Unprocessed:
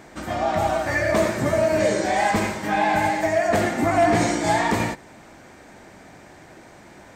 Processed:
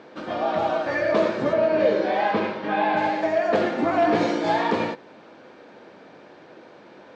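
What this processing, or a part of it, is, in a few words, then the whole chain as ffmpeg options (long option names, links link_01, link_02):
kitchen radio: -filter_complex "[0:a]asettb=1/sr,asplit=3[link_01][link_02][link_03];[link_01]atrim=end=1.534[link_04];[link_02]atrim=start=1.53:end=2.97,asetpts=PTS-STARTPTS,afade=type=in:duration=0.004:curve=qsin,afade=type=out:start_time=1.436:duration=0.004:curve=qsin,lowpass=4000[link_05];[link_03]atrim=start=2.966[link_06];[link_04][link_05]acrossfade=duration=0.004:curve1=hsin:curve2=qsin[link_07];[link_07][link_06]acrossfade=duration=0.004:curve1=qsin:curve2=hsin,highpass=220,equalizer=frequency=490:width_type=q:width=4:gain=7,equalizer=frequency=730:width_type=q:width=4:gain=-4,equalizer=frequency=2000:width_type=q:width=4:gain=-8,lowpass=frequency=4300:width=0.5412,lowpass=frequency=4300:width=1.3066"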